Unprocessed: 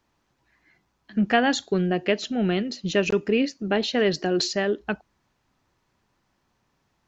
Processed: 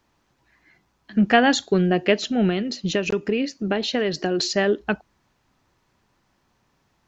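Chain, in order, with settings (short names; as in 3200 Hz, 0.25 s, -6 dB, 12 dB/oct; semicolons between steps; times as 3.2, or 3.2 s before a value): 2.48–4.5 compressor, threshold -23 dBFS, peak gain reduction 7.5 dB; gain +4 dB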